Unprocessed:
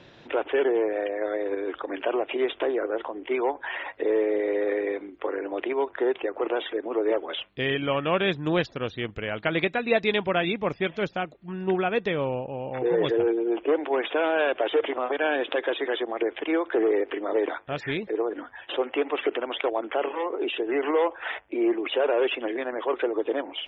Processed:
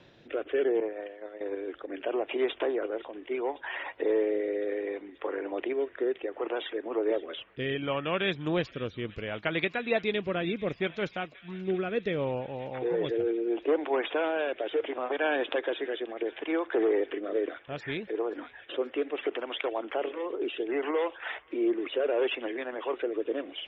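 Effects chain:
rotating-speaker cabinet horn 0.7 Hz
0:00.80–0:01.41: downward expander −20 dBFS
delay with a high-pass on its return 532 ms, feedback 78%, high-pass 1,700 Hz, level −18 dB
level −2.5 dB

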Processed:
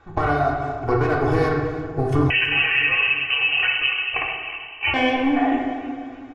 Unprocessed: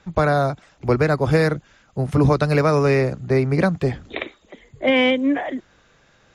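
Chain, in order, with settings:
tube saturation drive 10 dB, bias 0.6
parametric band 1,000 Hz +9 dB 1.9 octaves
comb filter 2.7 ms, depth 94%
downward compressor 6 to 1, threshold −20 dBFS, peak gain reduction 10.5 dB
convolution reverb RT60 1.8 s, pre-delay 4 ms, DRR −2 dB
0:02.30–0:04.94: voice inversion scrambler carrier 3,000 Hz
parametric band 94 Hz +7.5 dB 2 octaves
repeating echo 324 ms, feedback 57%, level −17 dB
one half of a high-frequency compander decoder only
level −2 dB

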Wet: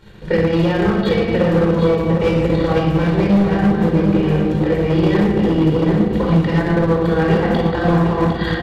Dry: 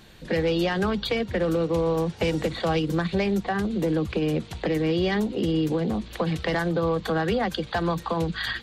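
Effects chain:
high-shelf EQ 3,300 Hz −11 dB
rectangular room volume 2,100 cubic metres, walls mixed, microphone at 4.6 metres
gain into a clipping stage and back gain 11.5 dB
transient designer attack +6 dB, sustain −6 dB
on a send: single-tap delay 755 ms −7 dB

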